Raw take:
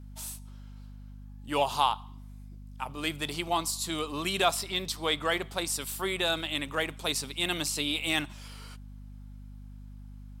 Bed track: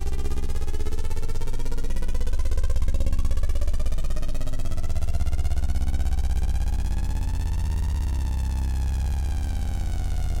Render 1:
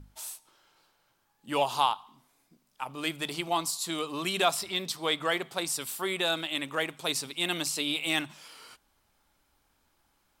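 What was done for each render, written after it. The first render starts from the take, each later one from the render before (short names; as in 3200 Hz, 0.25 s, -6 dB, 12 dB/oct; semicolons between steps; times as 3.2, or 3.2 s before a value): notches 50/100/150/200/250 Hz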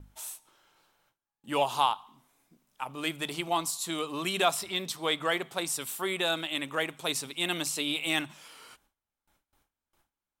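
gate with hold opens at -59 dBFS; bell 4700 Hz -5.5 dB 0.34 oct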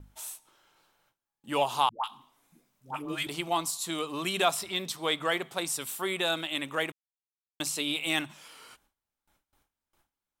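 1.89–3.27 dispersion highs, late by 0.147 s, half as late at 550 Hz; 6.92–7.6 mute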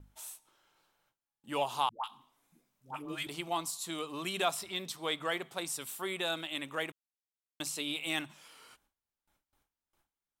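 gain -5.5 dB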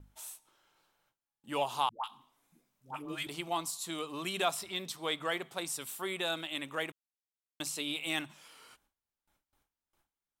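nothing audible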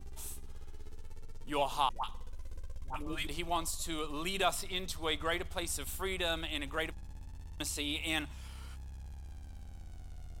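add bed track -21.5 dB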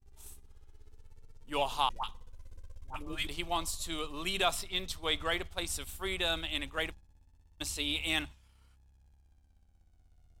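dynamic EQ 3400 Hz, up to +4 dB, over -48 dBFS, Q 0.85; expander -34 dBFS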